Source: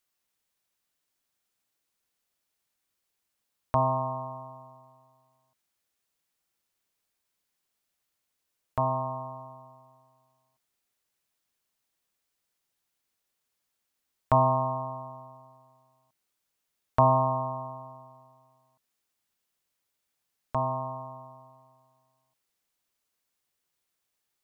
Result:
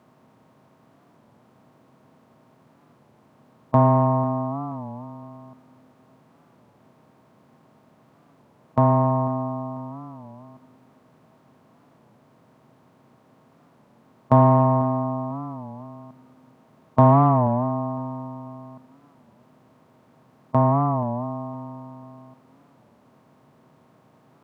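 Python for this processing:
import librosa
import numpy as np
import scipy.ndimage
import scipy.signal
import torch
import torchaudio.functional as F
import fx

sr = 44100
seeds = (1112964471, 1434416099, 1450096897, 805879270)

p1 = fx.bin_compress(x, sr, power=0.6)
p2 = fx.peak_eq(p1, sr, hz=190.0, db=14.0, octaves=2.4)
p3 = 10.0 ** (-16.0 / 20.0) * np.tanh(p2 / 10.0 ** (-16.0 / 20.0))
p4 = p2 + (p3 * 10.0 ** (-8.0 / 20.0))
p5 = scipy.signal.sosfilt(scipy.signal.butter(2, 140.0, 'highpass', fs=sr, output='sos'), p4)
p6 = fx.high_shelf(p5, sr, hz=2100.0, db=-8.5)
p7 = p6 + fx.echo_feedback(p6, sr, ms=495, feedback_pct=33, wet_db=-18, dry=0)
y = fx.record_warp(p7, sr, rpm=33.33, depth_cents=160.0)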